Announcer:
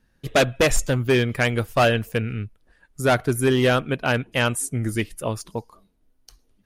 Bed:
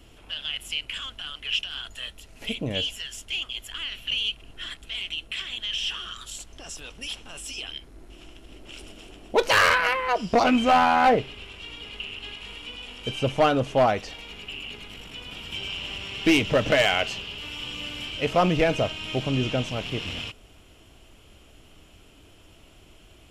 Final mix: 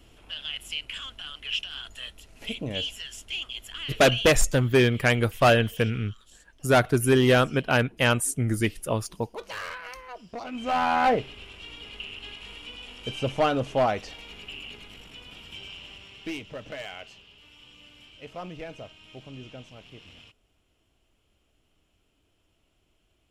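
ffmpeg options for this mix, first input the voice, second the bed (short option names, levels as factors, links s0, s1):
-filter_complex "[0:a]adelay=3650,volume=0.944[s0];[1:a]volume=3.76,afade=t=out:st=4.18:d=0.27:silence=0.188365,afade=t=in:st=10.51:d=0.43:silence=0.188365,afade=t=out:st=14.47:d=1.99:silence=0.188365[s1];[s0][s1]amix=inputs=2:normalize=0"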